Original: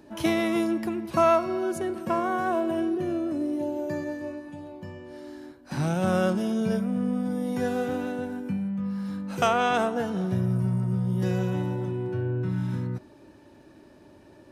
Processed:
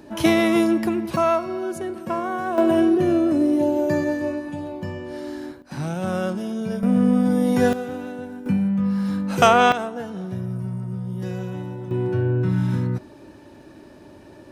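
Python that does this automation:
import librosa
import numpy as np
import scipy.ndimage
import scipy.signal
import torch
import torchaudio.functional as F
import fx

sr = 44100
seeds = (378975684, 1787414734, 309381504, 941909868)

y = fx.gain(x, sr, db=fx.steps((0.0, 7.0), (1.16, 0.5), (2.58, 9.5), (5.62, -1.0), (6.83, 9.5), (7.73, -1.5), (8.46, 8.5), (9.72, -3.0), (11.91, 7.0)))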